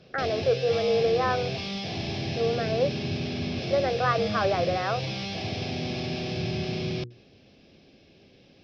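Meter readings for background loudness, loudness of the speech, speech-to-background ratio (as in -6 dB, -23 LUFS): -31.5 LUFS, -27.0 LUFS, 4.5 dB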